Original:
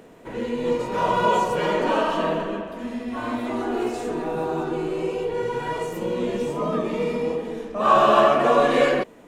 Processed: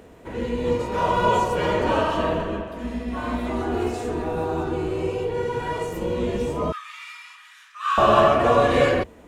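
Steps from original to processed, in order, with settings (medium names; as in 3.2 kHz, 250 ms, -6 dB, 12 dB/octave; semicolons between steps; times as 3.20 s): octave divider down 2 oct, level -3 dB; 6.72–7.98 s: steep high-pass 1.2 kHz 48 dB/octave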